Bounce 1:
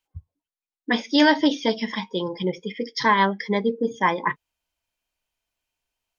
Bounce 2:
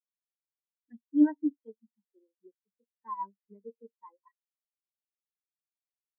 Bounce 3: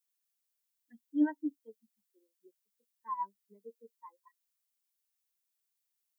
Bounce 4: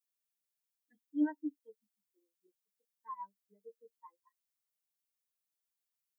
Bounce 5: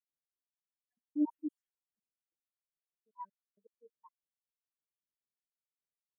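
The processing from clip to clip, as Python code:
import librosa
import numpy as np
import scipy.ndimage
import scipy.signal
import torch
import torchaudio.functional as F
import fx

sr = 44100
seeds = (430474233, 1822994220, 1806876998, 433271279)

y1 = scipy.signal.sosfilt(scipy.signal.cheby1(4, 1.0, [200.0, 3700.0], 'bandpass', fs=sr, output='sos'), x)
y1 = fx.spectral_expand(y1, sr, expansion=4.0)
y1 = y1 * 10.0 ** (-6.0 / 20.0)
y2 = fx.tilt_eq(y1, sr, slope=3.5)
y3 = y2 + 0.8 * np.pad(y2, (int(6.5 * sr / 1000.0), 0))[:len(y2)]
y3 = y3 * 10.0 ** (-8.0 / 20.0)
y4 = fx.spec_dropout(y3, sr, seeds[0], share_pct=70)
y4 = fx.env_lowpass(y4, sr, base_hz=430.0, full_db=-37.0)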